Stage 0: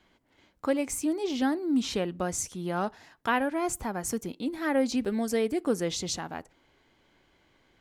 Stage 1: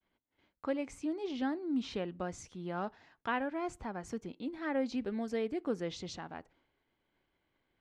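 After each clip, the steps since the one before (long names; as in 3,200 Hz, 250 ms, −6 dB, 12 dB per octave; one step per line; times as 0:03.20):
low-pass filter 3,900 Hz 12 dB per octave
downward expander −59 dBFS
level −7.5 dB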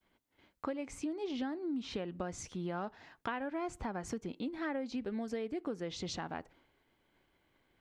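downward compressor 6 to 1, threshold −41 dBFS, peak gain reduction 12.5 dB
level +6 dB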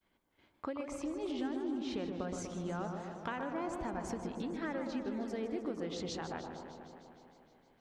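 bucket-brigade delay 122 ms, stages 1,024, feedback 71%, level −5.5 dB
feedback echo with a swinging delay time 154 ms, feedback 72%, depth 134 cents, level −11.5 dB
level −2 dB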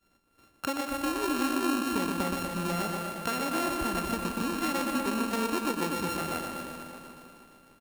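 samples sorted by size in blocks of 32 samples
on a send: single-tap delay 241 ms −9.5 dB
on the sum: level +7.5 dB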